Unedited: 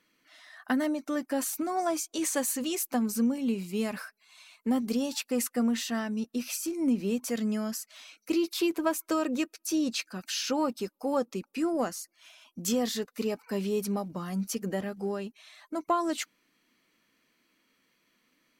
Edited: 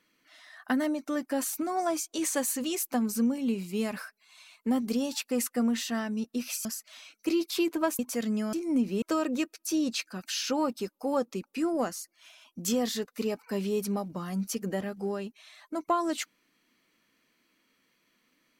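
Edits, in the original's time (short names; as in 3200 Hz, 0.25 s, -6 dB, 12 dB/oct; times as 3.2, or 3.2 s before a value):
6.65–7.14 swap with 7.68–9.02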